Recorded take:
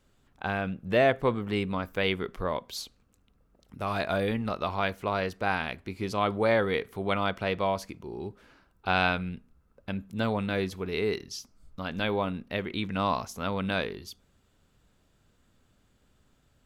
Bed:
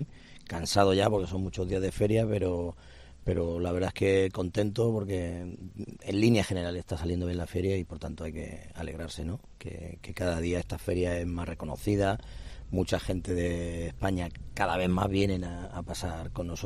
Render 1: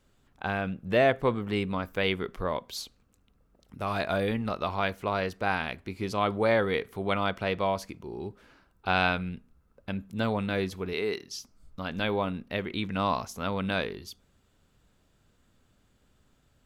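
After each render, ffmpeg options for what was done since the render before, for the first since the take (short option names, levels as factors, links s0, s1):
-filter_complex "[0:a]asettb=1/sr,asplit=3[s0][s1][s2];[s0]atrim=end=10.934[s3];[s1]atrim=start=10.93:end=11.33,asetpts=PTS-STARTPTS,afade=t=in:d=0.004:c=qsin,afade=t=out:st=0.396:d=0.004:c=qsin,highpass=f=290:p=1[s4];[s2]atrim=start=11.326[s5];[s3][s4]acrossfade=d=0.004:c1=hsin:c2=qsin[s6];[s6][s5]acrossfade=d=0.004:c1=qsin:c2=hsin"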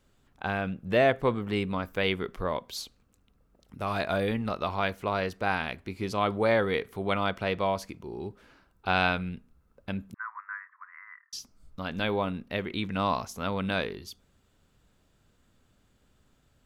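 -filter_complex "[0:a]asettb=1/sr,asplit=3[s0][s1][s2];[s0]atrim=end=10.144[s3];[s1]atrim=start=10.14:end=11.33,asetpts=PTS-STARTPTS,afade=t=in:d=0.004:c=qsin,afade=t=out:st=1.186:d=0.004:c=qsin,asuperpass=centerf=1400:order=12:qfactor=1.5[s4];[s2]atrim=start=11.326[s5];[s3][s4]acrossfade=d=0.004:c1=hsin:c2=qsin[s6];[s6][s5]acrossfade=d=0.004:c1=qsin:c2=hsin"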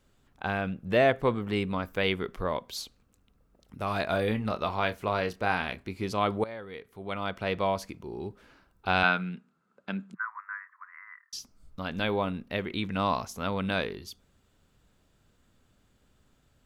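-filter_complex "[0:a]asettb=1/sr,asplit=3[s0][s1][s2];[s0]atrim=end=4.054[s3];[s1]atrim=start=4.05:end=5.83,asetpts=PTS-STARTPTS,afade=t=in:d=0.004:c=qsin,afade=t=out:st=1.776:d=0.004:c=qsin,asplit=2[s4][s5];[s5]adelay=28,volume=0.282[s6];[s4][s6]amix=inputs=2:normalize=0,atrim=end_sample=78498[s7];[s2]atrim=start=5.826[s8];[s3][s7]acrossfade=d=0.004:c1=hsin:c2=qsin[s9];[s9][s8]acrossfade=d=0.004:c1=qsin:c2=hsin,asettb=1/sr,asplit=3[s10][s11][s12];[s10]atrim=end=9.034[s13];[s11]atrim=start=9.03:end=10.25,asetpts=PTS-STARTPTS,afade=t=in:d=0.004:c=qsin,afade=t=out:st=1.216:d=0.004:c=qsin,highpass=f=180:w=0.5412,highpass=f=180:w=1.3066,equalizer=f=180:t=q:w=4:g=4,equalizer=f=280:t=q:w=4:g=-4,equalizer=f=520:t=q:w=4:g=-4,equalizer=f=1400:t=q:w=4:g=7,equalizer=f=5600:t=q:w=4:g=-5,lowpass=f=8100:w=0.5412,lowpass=f=8100:w=1.3066[s14];[s12]atrim=start=10.246[s15];[s13][s14]acrossfade=d=0.004:c1=hsin:c2=qsin[s16];[s16][s15]acrossfade=d=0.004:c1=qsin:c2=hsin,asplit=2[s17][s18];[s17]atrim=end=6.44,asetpts=PTS-STARTPTS,afade=t=out:st=6.436:d=0.004:c=hsin:silence=0.141254[s19];[s18]atrim=start=6.44,asetpts=PTS-STARTPTS,afade=t=in:d=1.12:c=qua:silence=0.141254[s20];[s19][s20]concat=n=2:v=0:a=1"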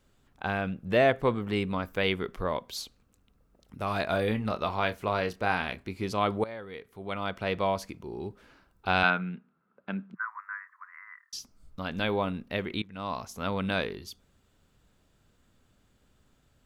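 -filter_complex "[0:a]asettb=1/sr,asplit=3[s0][s1][s2];[s0]atrim=end=9.104[s3];[s1]atrim=start=9.1:end=10.23,asetpts=PTS-STARTPTS,afade=t=in:d=0.004:c=qsin,afade=t=out:st=1.126:d=0.004:c=qsin,lowpass=2500[s4];[s2]atrim=start=10.226[s5];[s3][s4]acrossfade=d=0.004:c1=hsin:c2=qsin[s6];[s6][s5]acrossfade=d=0.004:c1=qsin:c2=hsin,asplit=2[s7][s8];[s7]atrim=end=12.82,asetpts=PTS-STARTPTS,afade=t=out:st=12.816:d=0.004:c=hsin:silence=0.0891251[s9];[s8]atrim=start=12.82,asetpts=PTS-STARTPTS,afade=t=in:d=0.67:silence=0.0891251[s10];[s9][s10]concat=n=2:v=0:a=1"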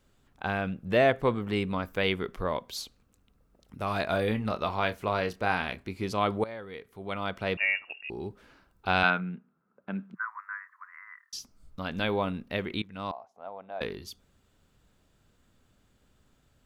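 -filter_complex "[0:a]asettb=1/sr,asplit=3[s0][s1][s2];[s0]atrim=end=7.574[s3];[s1]atrim=start=7.57:end=8.1,asetpts=PTS-STARTPTS,afade=t=in:d=0.004:c=qsin,afade=t=out:st=0.526:d=0.004:c=qsin,lowpass=f=2500:t=q:w=0.5098,lowpass=f=2500:t=q:w=0.6013,lowpass=f=2500:t=q:w=0.9,lowpass=f=2500:t=q:w=2.563,afreqshift=-2900[s4];[s2]atrim=start=8.096[s5];[s3][s4]acrossfade=d=0.004:c1=hsin:c2=qsin[s6];[s6][s5]acrossfade=d=0.004:c1=qsin:c2=hsin,asettb=1/sr,asplit=3[s7][s8][s9];[s7]atrim=end=9.204[s10];[s8]atrim=start=9.2:end=9.95,asetpts=PTS-STARTPTS,afade=t=in:d=0.004:c=qsin,afade=t=out:st=0.746:d=0.004:c=qsin,highshelf=f=2200:g=-10[s11];[s9]atrim=start=9.946[s12];[s10][s11]acrossfade=d=0.004:c1=hsin:c2=qsin[s13];[s13][s12]acrossfade=d=0.004:c1=qsin:c2=hsin,asettb=1/sr,asplit=3[s14][s15][s16];[s14]atrim=end=13.114[s17];[s15]atrim=start=13.11:end=13.81,asetpts=PTS-STARTPTS,afade=t=in:d=0.004:c=qsin,afade=t=out:st=0.696:d=0.004:c=qsin,bandpass=f=720:t=q:w=5.1[s18];[s16]atrim=start=13.806[s19];[s17][s18]acrossfade=d=0.004:c1=hsin:c2=qsin[s20];[s20][s19]acrossfade=d=0.004:c1=qsin:c2=hsin"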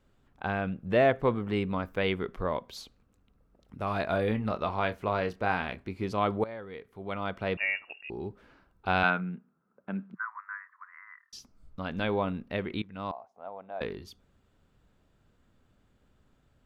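-af "highshelf=f=3700:g=-11"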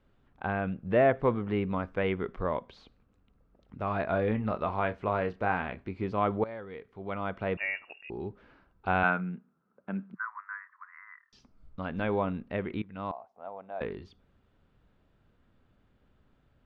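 -filter_complex "[0:a]acrossover=split=2700[s0][s1];[s1]acompressor=threshold=0.00178:ratio=4:attack=1:release=60[s2];[s0][s2]amix=inputs=2:normalize=0,lowpass=3700"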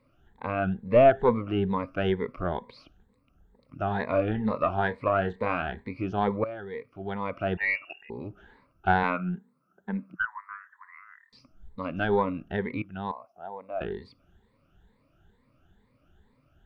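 -af "afftfilt=real='re*pow(10,17/40*sin(2*PI*(0.96*log(max(b,1)*sr/1024/100)/log(2)-(2.2)*(pts-256)/sr)))':imag='im*pow(10,17/40*sin(2*PI*(0.96*log(max(b,1)*sr/1024/100)/log(2)-(2.2)*(pts-256)/sr)))':win_size=1024:overlap=0.75,aeval=exprs='0.398*(cos(1*acos(clip(val(0)/0.398,-1,1)))-cos(1*PI/2))+0.0562*(cos(2*acos(clip(val(0)/0.398,-1,1)))-cos(2*PI/2))':c=same"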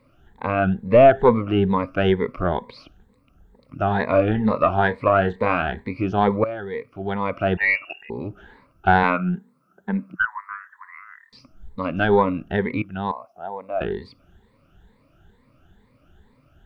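-af "volume=2.37,alimiter=limit=0.708:level=0:latency=1"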